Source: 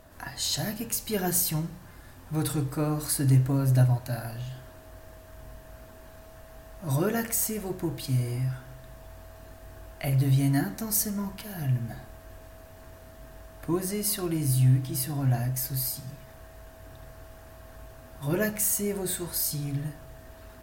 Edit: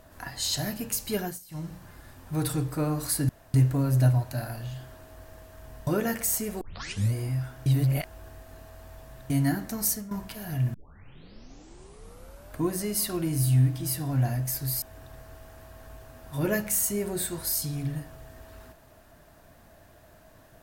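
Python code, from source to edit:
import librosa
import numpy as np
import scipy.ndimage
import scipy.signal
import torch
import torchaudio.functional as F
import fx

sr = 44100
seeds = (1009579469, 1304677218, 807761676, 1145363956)

y = fx.edit(x, sr, fx.fade_down_up(start_s=1.15, length_s=0.57, db=-23.5, fade_s=0.24),
    fx.insert_room_tone(at_s=3.29, length_s=0.25),
    fx.cut(start_s=5.62, length_s=1.34),
    fx.tape_start(start_s=7.7, length_s=0.52),
    fx.reverse_span(start_s=8.75, length_s=1.64),
    fx.fade_out_to(start_s=10.95, length_s=0.25, floor_db=-13.5),
    fx.tape_start(start_s=11.83, length_s=1.88),
    fx.cut(start_s=15.91, length_s=0.8), tone=tone)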